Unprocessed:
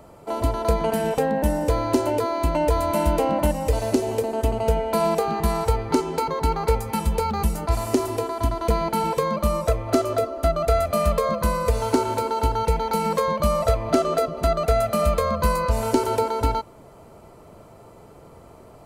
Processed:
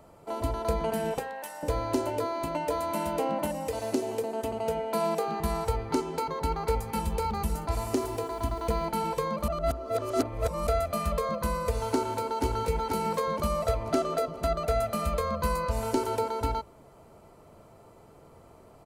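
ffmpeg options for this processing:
ffmpeg -i in.wav -filter_complex "[0:a]asettb=1/sr,asplit=3[link_01][link_02][link_03];[link_01]atrim=end=1.194[link_04];[link_02]atrim=start=1.19:end=1.63,asetpts=PTS-STARTPTS,afade=type=in:duration=0.004:curve=qsin,afade=type=out:start_time=0.436:duration=0.004:curve=qsin,highpass=930[link_05];[link_03]atrim=start=1.626[link_06];[link_04][link_05]acrossfade=duration=0.004:curve1=hsin:curve2=qsin[link_07];[link_07][link_06]acrossfade=duration=0.004:curve1=qsin:curve2=hsin,asettb=1/sr,asplit=3[link_08][link_09][link_10];[link_08]atrim=end=2.444[link_11];[link_09]atrim=start=2.44:end=5.4,asetpts=PTS-STARTPTS,afade=type=in:duration=0.004:curve=qsin,afade=type=out:start_time=2.956:duration=0.004:curve=qsin,highpass=150[link_12];[link_10]atrim=start=5.396[link_13];[link_11][link_12]acrossfade=duration=0.004:curve1=hsin:curve2=qsin[link_14];[link_14][link_13]acrossfade=duration=0.004:curve1=qsin:curve2=hsin,asplit=2[link_15][link_16];[link_16]afade=type=in:start_time=6.39:duration=0.01,afade=type=out:start_time=6.87:duration=0.01,aecho=0:1:270|540|810|1080|1350|1620|1890|2160|2430|2700|2970|3240:0.251189|0.21351|0.181484|0.154261|0.131122|0.111454|0.0947357|0.0805253|0.0684465|0.0581795|0.0494526|0.0420347[link_17];[link_15][link_17]amix=inputs=2:normalize=0,asettb=1/sr,asplit=3[link_18][link_19][link_20];[link_18]atrim=end=7.934[link_21];[link_19]atrim=start=7.93:end=8.86,asetpts=PTS-STARTPTS,afade=type=in:duration=0.004:curve=qsin,afade=type=out:start_time=0.926:duration=0.004:curve=qsin,acrusher=bits=7:mix=0:aa=0.5[link_22];[link_20]atrim=start=8.856[link_23];[link_21][link_22]acrossfade=duration=0.004:curve1=hsin:curve2=qsin[link_24];[link_24][link_23]acrossfade=duration=0.004:curve1=qsin:curve2=hsin,asplit=2[link_25][link_26];[link_26]afade=type=in:start_time=11.92:duration=0.01,afade=type=out:start_time=12.44:duration=0.01,aecho=0:1:480|960|1440|1920|2400|2880:0.595662|0.297831|0.148916|0.0744578|0.0372289|0.0186144[link_27];[link_25][link_27]amix=inputs=2:normalize=0,asplit=3[link_28][link_29][link_30];[link_28]atrim=end=9.482[link_31];[link_29]atrim=start=9.478:end=10.672,asetpts=PTS-STARTPTS,areverse[link_32];[link_30]atrim=start=10.668[link_33];[link_31][link_32]acrossfade=duration=0.004:curve1=hsin:curve2=hsin[link_34];[link_34][link_33]acrossfade=duration=0.004:curve1=hsin:curve2=hsin,bandreject=frequency=60:width_type=h:width=6,bandreject=frequency=120:width_type=h:width=6,bandreject=frequency=180:width_type=h:width=6,bandreject=frequency=240:width_type=h:width=6,bandreject=frequency=300:width_type=h:width=6,bandreject=frequency=360:width_type=h:width=6,bandreject=frequency=420:width_type=h:width=6,bandreject=frequency=480:width_type=h:width=6,bandreject=frequency=540:width_type=h:width=6,bandreject=frequency=600:width_type=h:width=6,volume=-6.5dB" out.wav

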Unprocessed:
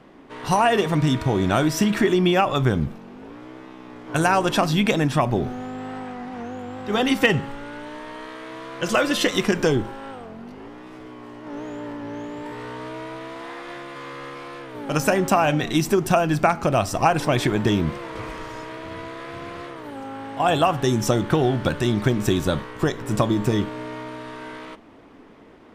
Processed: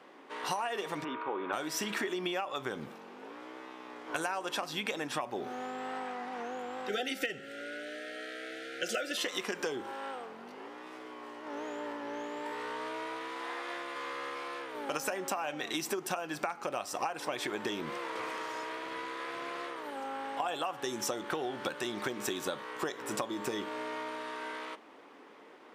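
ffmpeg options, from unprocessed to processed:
ffmpeg -i in.wav -filter_complex "[0:a]asplit=3[link_01][link_02][link_03];[link_01]afade=type=out:start_time=1.03:duration=0.02[link_04];[link_02]highpass=360,equalizer=frequency=680:width_type=q:width=4:gain=-10,equalizer=frequency=1100:width_type=q:width=4:gain=5,equalizer=frequency=1900:width_type=q:width=4:gain=-10,lowpass=frequency=2300:width=0.5412,lowpass=frequency=2300:width=1.3066,afade=type=in:start_time=1.03:duration=0.02,afade=type=out:start_time=1.52:duration=0.02[link_05];[link_03]afade=type=in:start_time=1.52:duration=0.02[link_06];[link_04][link_05][link_06]amix=inputs=3:normalize=0,asettb=1/sr,asplit=3[link_07][link_08][link_09];[link_07]atrim=end=6.894[link_10];[link_08]atrim=start=6.89:end=9.18,asetpts=PTS-STARTPTS,afade=type=in:duration=0.004:curve=qsin,afade=type=out:start_time=2.286:duration=0.004:curve=qsin,asuperstop=centerf=1000:order=20:qfactor=1.9[link_11];[link_09]atrim=start=9.176[link_12];[link_10][link_11]acrossfade=duration=0.004:curve1=hsin:curve2=qsin[link_13];[link_13][link_12]acrossfade=duration=0.004:curve1=qsin:curve2=hsin,highpass=450,bandreject=frequency=660:width=12,acompressor=threshold=-29dB:ratio=10,volume=-2dB" out.wav

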